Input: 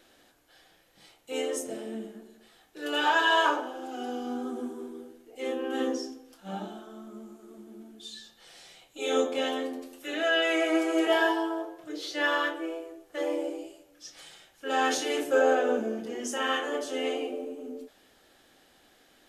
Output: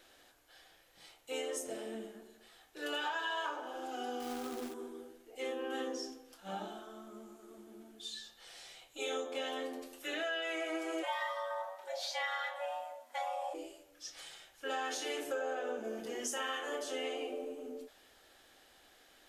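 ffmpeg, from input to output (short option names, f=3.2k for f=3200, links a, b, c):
-filter_complex "[0:a]asettb=1/sr,asplit=3[a][b][c];[a]atrim=end=4.204[d];[b]atrim=start=4.2:end=4.74,asetpts=PTS-STARTPTS,afade=t=in:d=0.004:c=qsin,afade=t=out:st=0.536:d=0.004:c=qsin,acrusher=bits=3:mode=log:mix=0:aa=0.000001[e];[c]atrim=start=4.736[f];[d][e]acrossfade=d=0.004:c1=hsin:c2=qsin[g];[g][f]acrossfade=d=0.004:c1=qsin:c2=hsin,asplit=3[h][i][j];[h]afade=t=out:st=11.02:d=0.02[k];[i]afreqshift=240,afade=t=in:st=11.02:d=0.02,afade=t=out:st=13.53:d=0.02[l];[j]afade=t=in:st=13.53:d=0.02[m];[k][l][m]amix=inputs=3:normalize=0,asettb=1/sr,asplit=3[n][o][p];[n]atrim=end=15.844[q];[o]atrim=start=15.84:end=16.83,asetpts=PTS-STARTPTS,afade=t=in:d=0.004:c=qsin,afade=t=out:st=0.986:d=0.004:c=qsin,highshelf=f=8k:g=6.5[r];[p]atrim=start=16.826[s];[q][r]acrossfade=d=0.004:c1=hsin:c2=qsin[t];[t][s]acrossfade=d=0.004:c1=qsin:c2=hsin,equalizer=f=200:t=o:w=1.8:g=-8,acompressor=threshold=-34dB:ratio=6,volume=-1dB"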